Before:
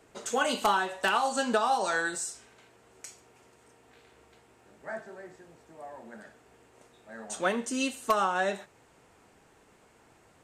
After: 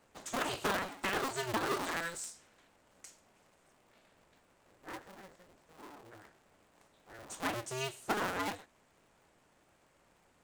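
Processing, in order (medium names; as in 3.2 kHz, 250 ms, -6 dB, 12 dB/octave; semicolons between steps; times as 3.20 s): cycle switcher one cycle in 2, inverted; trim -8 dB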